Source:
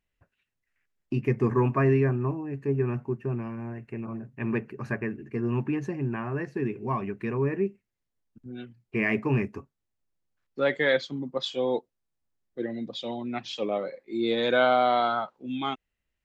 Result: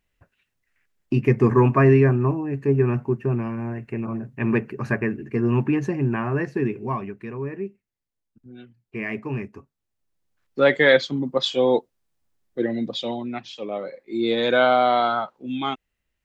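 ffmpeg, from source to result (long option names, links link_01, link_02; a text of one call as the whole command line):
ffmpeg -i in.wav -af "volume=26.5dB,afade=type=out:start_time=6.48:duration=0.73:silence=0.298538,afade=type=in:start_time=9.57:duration=1.04:silence=0.266073,afade=type=out:start_time=12.89:duration=0.66:silence=0.251189,afade=type=in:start_time=13.55:duration=0.6:silence=0.398107" out.wav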